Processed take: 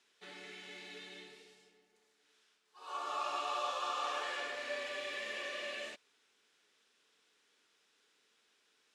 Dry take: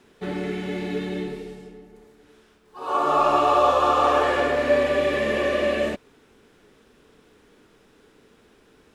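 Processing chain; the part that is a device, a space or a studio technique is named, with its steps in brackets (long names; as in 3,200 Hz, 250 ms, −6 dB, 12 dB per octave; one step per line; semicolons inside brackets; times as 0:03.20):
piezo pickup straight into a mixer (low-pass filter 5,600 Hz 12 dB per octave; first difference)
level −1.5 dB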